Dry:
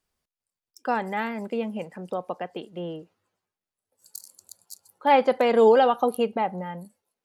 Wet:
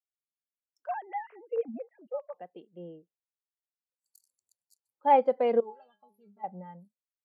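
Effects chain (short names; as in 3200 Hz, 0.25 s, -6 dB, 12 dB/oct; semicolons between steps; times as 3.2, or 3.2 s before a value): 0.87–2.34 sine-wave speech; 5.6–6.44 metallic resonator 200 Hz, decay 0.39 s, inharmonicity 0.008; spectral expander 1.5:1; gain -3.5 dB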